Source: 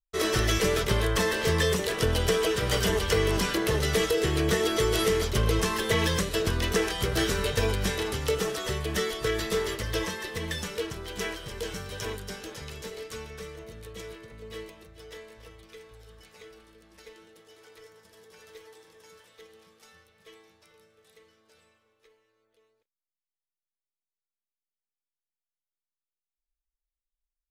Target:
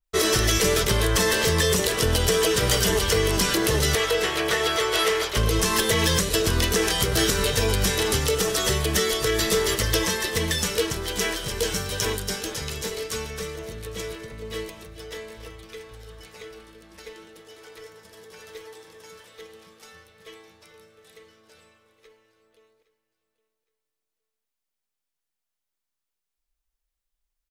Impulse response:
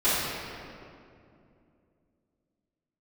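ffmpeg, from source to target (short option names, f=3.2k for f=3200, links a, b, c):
-filter_complex "[0:a]asettb=1/sr,asplit=3[a][b][c];[a]atrim=end=3.954[d];[b]atrim=start=3.95:end=5.37,asetpts=PTS-STARTPTS,afade=t=in:d=0.004:c=qsin,afade=t=out:st=1.416:d=0.004:c=qsin,acrossover=split=480 3600:gain=0.0891 1 0.251[e][f][g];[e][f][g]amix=inputs=3:normalize=0[h];[c]atrim=start=5.366[i];[d][h]acrossfade=d=0.004:c1=hsin:c2=qsin[j];[j][i]acrossfade=d=0.004:c1=qsin:c2=hsin,aecho=1:1:814|1628:0.112|0.0303,alimiter=limit=-20dB:level=0:latency=1:release=182,adynamicequalizer=threshold=0.00355:dfrequency=3900:dqfactor=0.7:tfrequency=3900:tqfactor=0.7:attack=5:release=100:ratio=0.375:range=3.5:mode=boostabove:tftype=highshelf,volume=7.5dB"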